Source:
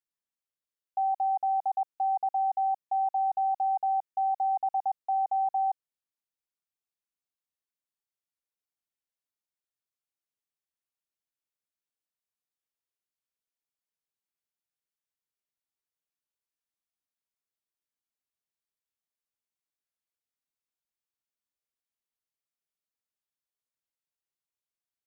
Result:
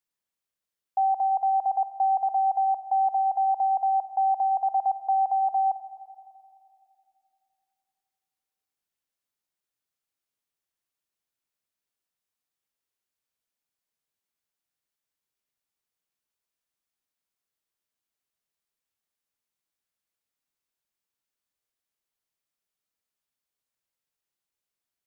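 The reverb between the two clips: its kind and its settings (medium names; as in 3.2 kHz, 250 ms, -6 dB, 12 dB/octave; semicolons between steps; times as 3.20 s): spring tank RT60 2.6 s, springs 42/53 ms, chirp 60 ms, DRR 12 dB; trim +4.5 dB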